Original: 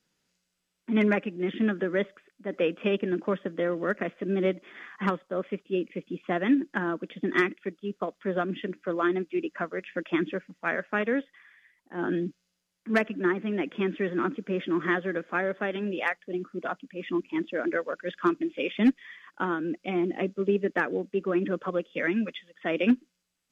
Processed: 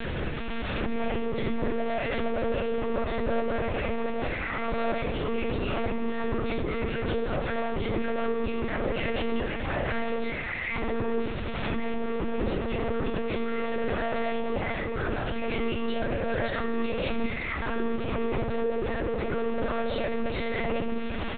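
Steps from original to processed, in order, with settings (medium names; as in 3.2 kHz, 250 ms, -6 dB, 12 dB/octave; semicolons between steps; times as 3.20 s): one-bit comparator; treble shelf 2.8 kHz -3 dB; peak limiter -39.5 dBFS, peak gain reduction 10.5 dB; tape speed +10%; overdrive pedal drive 22 dB, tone 1.1 kHz, clips at -37 dBFS; frequency-shifting echo 105 ms, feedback 50%, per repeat +56 Hz, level -15 dB; simulated room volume 76 m³, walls mixed, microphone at 2.8 m; monotone LPC vocoder at 8 kHz 230 Hz; swell ahead of each attack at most 21 dB/s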